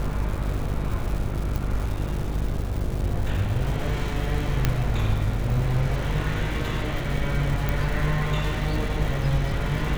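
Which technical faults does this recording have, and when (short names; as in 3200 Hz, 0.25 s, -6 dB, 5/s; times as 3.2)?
buzz 50 Hz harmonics 17 -29 dBFS
crackle 420/s -32 dBFS
1.56 pop
4.65 pop -7 dBFS
7.69 pop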